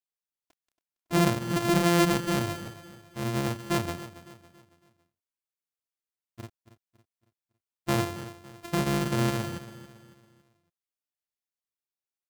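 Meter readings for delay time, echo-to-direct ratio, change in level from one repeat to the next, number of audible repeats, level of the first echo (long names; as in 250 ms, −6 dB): 278 ms, −14.0 dB, −7.5 dB, 3, −15.0 dB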